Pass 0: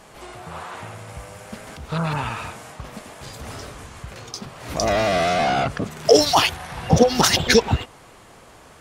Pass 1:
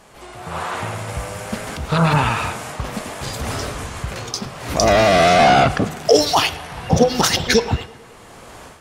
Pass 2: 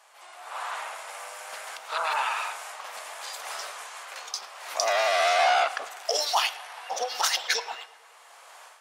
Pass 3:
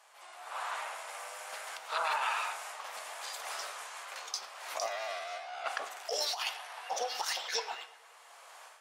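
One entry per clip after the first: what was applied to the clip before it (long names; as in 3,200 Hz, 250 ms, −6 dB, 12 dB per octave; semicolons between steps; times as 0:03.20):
hum removal 158.3 Hz, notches 37; automatic gain control gain up to 11 dB; tape delay 108 ms, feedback 70%, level −19.5 dB, low-pass 4,300 Hz; level −1 dB
high-pass filter 690 Hz 24 dB per octave; level −7 dB
compressor whose output falls as the input rises −27 dBFS, ratio −0.5; flanger 1.2 Hz, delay 9.6 ms, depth 5.6 ms, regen +80%; level −2 dB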